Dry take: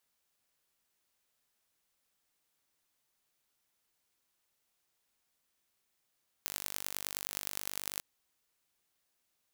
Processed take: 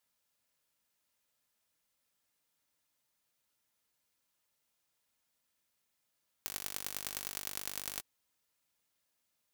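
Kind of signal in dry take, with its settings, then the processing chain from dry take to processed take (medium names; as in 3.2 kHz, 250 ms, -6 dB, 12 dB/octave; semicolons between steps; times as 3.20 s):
pulse train 49.4 per s, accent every 5, -7 dBFS 1.54 s
comb of notches 380 Hz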